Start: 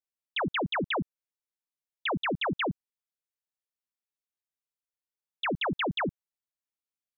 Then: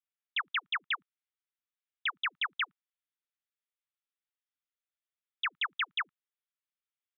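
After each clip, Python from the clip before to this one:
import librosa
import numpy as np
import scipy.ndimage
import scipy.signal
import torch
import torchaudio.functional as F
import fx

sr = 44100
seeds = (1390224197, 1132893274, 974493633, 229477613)

y = scipy.signal.sosfilt(scipy.signal.ellip(3, 1.0, 40, [1200.0, 3600.0], 'bandpass', fs=sr, output='sos'), x)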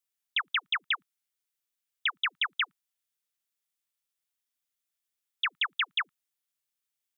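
y = fx.high_shelf(x, sr, hz=3400.0, db=11.0)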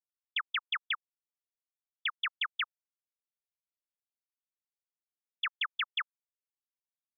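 y = fx.spectral_expand(x, sr, expansion=2.5)
y = y * librosa.db_to_amplitude(-3.0)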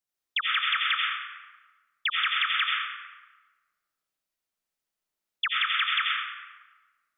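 y = fx.rev_freeverb(x, sr, rt60_s=1.3, hf_ratio=0.6, predelay_ms=50, drr_db=-3.5)
y = y * librosa.db_to_amplitude(5.0)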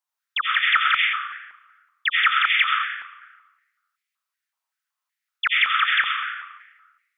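y = fx.filter_held_highpass(x, sr, hz=5.3, low_hz=940.0, high_hz=2100.0)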